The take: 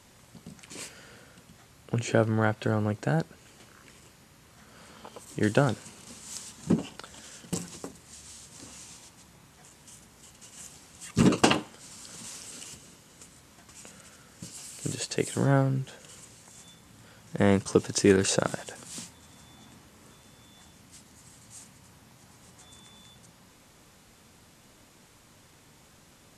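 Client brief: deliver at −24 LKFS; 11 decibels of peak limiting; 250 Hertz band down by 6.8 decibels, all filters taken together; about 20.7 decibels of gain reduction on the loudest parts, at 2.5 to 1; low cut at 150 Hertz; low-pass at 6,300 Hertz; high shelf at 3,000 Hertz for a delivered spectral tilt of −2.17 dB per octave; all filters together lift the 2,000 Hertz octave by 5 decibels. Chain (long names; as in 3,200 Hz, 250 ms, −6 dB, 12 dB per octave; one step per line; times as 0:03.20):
high-pass filter 150 Hz
low-pass filter 6,300 Hz
parametric band 250 Hz −8.5 dB
parametric band 2,000 Hz +5 dB
high-shelf EQ 3,000 Hz +5.5 dB
downward compressor 2.5 to 1, threshold −50 dBFS
level +26 dB
brickwall limiter −8.5 dBFS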